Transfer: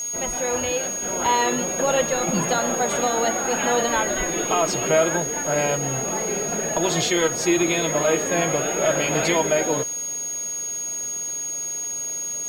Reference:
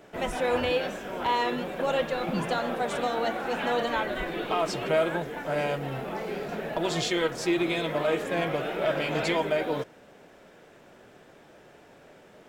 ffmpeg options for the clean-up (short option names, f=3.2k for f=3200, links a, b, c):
-af "bandreject=f=6.6k:w=30,afwtdn=0.0063,asetnsamples=n=441:p=0,asendcmd='1.02 volume volume -5.5dB',volume=0dB"